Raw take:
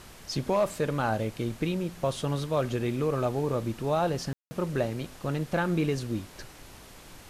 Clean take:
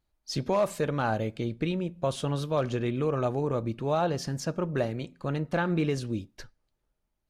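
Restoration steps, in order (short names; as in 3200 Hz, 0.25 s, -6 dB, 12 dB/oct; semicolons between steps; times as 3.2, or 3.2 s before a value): room tone fill 4.33–4.51; noise print and reduce 27 dB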